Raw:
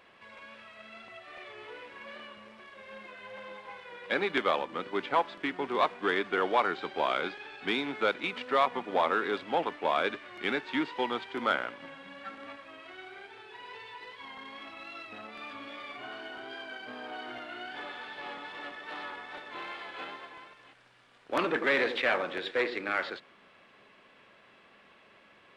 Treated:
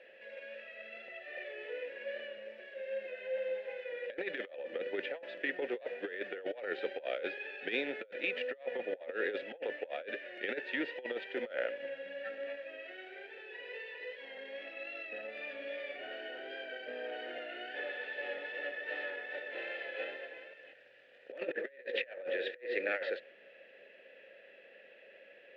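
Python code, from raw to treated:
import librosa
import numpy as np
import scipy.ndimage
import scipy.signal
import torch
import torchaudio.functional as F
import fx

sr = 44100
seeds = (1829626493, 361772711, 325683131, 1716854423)

y = fx.vowel_filter(x, sr, vowel='e')
y = fx.over_compress(y, sr, threshold_db=-44.0, ratio=-0.5)
y = y * 10.0 ** (7.5 / 20.0)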